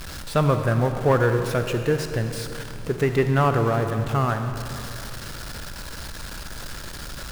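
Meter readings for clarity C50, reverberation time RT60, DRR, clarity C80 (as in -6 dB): 7.0 dB, 2.9 s, 6.5 dB, 7.5 dB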